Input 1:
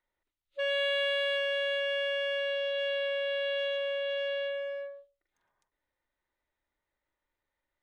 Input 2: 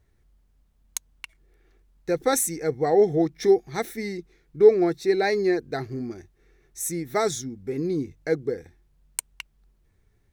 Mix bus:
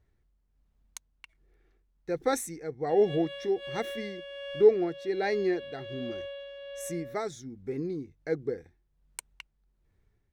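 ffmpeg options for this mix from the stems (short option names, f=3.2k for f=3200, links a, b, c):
-filter_complex "[0:a]equalizer=f=2k:w=2.6:g=-9,adelay=2300,volume=-5dB[a];[1:a]lowpass=f=3.9k:p=1,volume=-4.5dB,asplit=2[b][c];[c]apad=whole_len=446343[d];[a][d]sidechaincompress=threshold=-32dB:ratio=8:attack=16:release=114[e];[e][b]amix=inputs=2:normalize=0,tremolo=f=1.3:d=0.53"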